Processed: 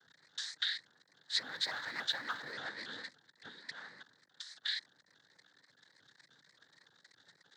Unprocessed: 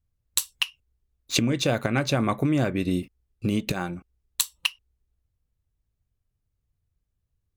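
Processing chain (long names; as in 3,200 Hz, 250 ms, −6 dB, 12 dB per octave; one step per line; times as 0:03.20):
converter with a step at zero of −23.5 dBFS
downward expander −25 dBFS
0:03.48–0:04.67: downward compressor 4 to 1, threshold −31 dBFS, peak gain reduction 12 dB
soft clipping −19 dBFS, distortion −13 dB
cochlear-implant simulation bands 8
pair of resonant band-passes 2,600 Hz, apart 1.1 octaves
0:01.39–0:02.53: noise that follows the level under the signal 33 dB
pitch modulation by a square or saw wave saw up 3.5 Hz, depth 160 cents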